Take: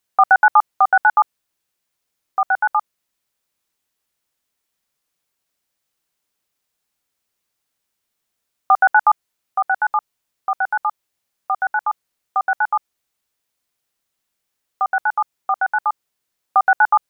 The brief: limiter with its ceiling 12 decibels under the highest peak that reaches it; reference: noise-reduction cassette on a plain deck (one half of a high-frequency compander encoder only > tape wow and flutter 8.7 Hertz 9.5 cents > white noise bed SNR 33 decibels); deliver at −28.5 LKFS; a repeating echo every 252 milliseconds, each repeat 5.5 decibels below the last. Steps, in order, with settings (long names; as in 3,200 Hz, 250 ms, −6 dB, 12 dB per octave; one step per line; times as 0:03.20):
brickwall limiter −15 dBFS
repeating echo 252 ms, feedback 53%, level −5.5 dB
one half of a high-frequency compander encoder only
tape wow and flutter 8.7 Hz 9.5 cents
white noise bed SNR 33 dB
level −2.5 dB